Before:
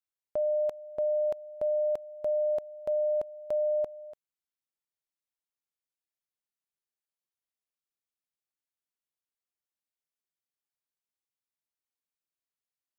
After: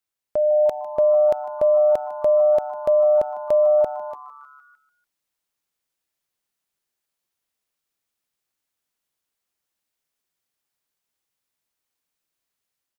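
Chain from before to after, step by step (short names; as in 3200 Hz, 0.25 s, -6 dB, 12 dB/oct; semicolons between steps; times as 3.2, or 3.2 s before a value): AGC gain up to 4.5 dB; frequency-shifting echo 0.151 s, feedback 62%, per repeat +140 Hz, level -18 dB; gain +7 dB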